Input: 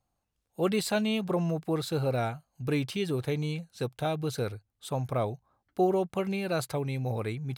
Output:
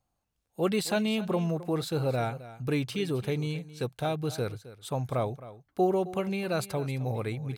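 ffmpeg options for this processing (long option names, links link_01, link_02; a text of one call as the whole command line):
ffmpeg -i in.wav -af "aecho=1:1:265:0.158" out.wav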